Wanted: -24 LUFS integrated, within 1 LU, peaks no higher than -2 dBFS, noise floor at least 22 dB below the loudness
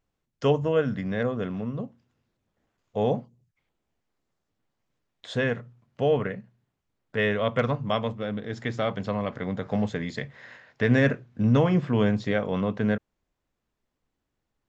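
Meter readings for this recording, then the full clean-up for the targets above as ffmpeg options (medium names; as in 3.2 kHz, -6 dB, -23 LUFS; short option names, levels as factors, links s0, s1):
loudness -27.0 LUFS; peak level -8.5 dBFS; loudness target -24.0 LUFS
-> -af "volume=1.41"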